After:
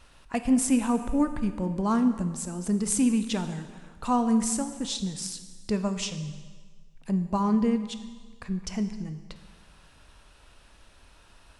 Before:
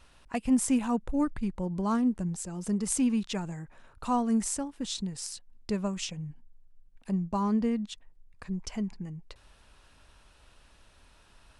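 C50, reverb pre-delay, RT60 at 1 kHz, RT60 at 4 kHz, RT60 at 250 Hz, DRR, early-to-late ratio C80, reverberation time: 10.5 dB, 6 ms, 1.5 s, 1.4 s, 1.5 s, 8.5 dB, 11.5 dB, 1.5 s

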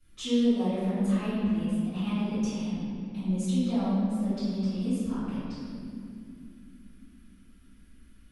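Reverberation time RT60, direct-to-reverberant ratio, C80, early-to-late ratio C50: 2.6 s, -17.5 dB, -1.5 dB, -4.0 dB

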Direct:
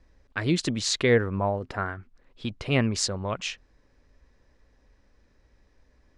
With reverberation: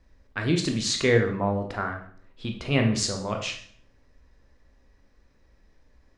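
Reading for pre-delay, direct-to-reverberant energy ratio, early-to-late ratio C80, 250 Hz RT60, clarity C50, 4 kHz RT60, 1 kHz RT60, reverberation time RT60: 14 ms, 3.0 dB, 11.5 dB, 0.75 s, 8.0 dB, 0.50 s, 0.50 s, 0.55 s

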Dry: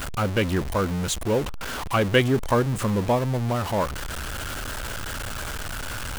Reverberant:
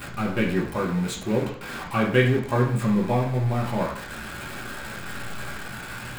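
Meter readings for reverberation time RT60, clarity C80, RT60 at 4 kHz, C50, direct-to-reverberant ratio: 0.65 s, 10.0 dB, 0.65 s, 6.5 dB, -3.5 dB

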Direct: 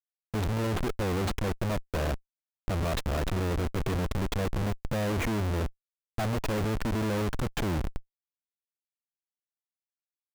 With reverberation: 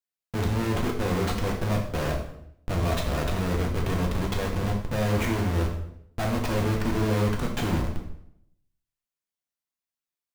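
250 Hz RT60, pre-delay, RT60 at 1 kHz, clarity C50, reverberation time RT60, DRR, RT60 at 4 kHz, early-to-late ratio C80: 0.85 s, 4 ms, 0.65 s, 5.5 dB, 0.70 s, -0.5 dB, 0.60 s, 9.0 dB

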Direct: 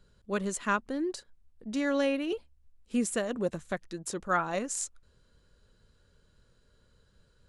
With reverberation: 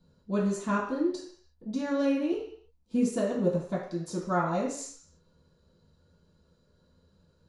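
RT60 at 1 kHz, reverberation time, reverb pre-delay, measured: 0.60 s, 0.60 s, 3 ms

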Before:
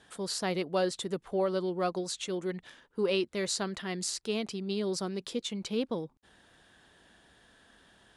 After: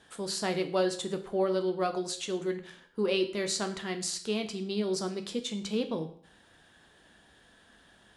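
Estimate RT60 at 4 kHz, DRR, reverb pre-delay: 0.50 s, 6.0 dB, 11 ms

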